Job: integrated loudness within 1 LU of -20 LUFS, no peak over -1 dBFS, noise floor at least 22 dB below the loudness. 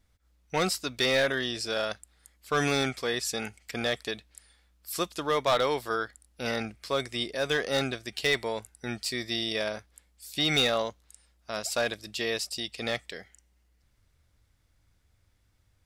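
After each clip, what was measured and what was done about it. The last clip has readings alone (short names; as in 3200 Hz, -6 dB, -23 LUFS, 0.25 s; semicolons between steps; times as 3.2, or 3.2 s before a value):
clipped 0.3%; flat tops at -18.0 dBFS; loudness -29.5 LUFS; peak -18.0 dBFS; loudness target -20.0 LUFS
-> clip repair -18 dBFS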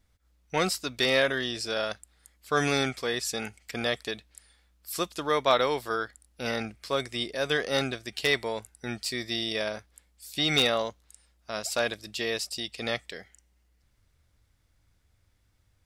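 clipped 0.0%; loudness -29.0 LUFS; peak -9.0 dBFS; loudness target -20.0 LUFS
-> gain +9 dB; limiter -1 dBFS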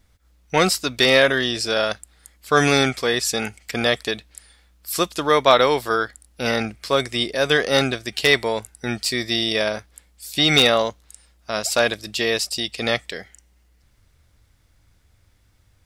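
loudness -20.0 LUFS; peak -1.0 dBFS; noise floor -60 dBFS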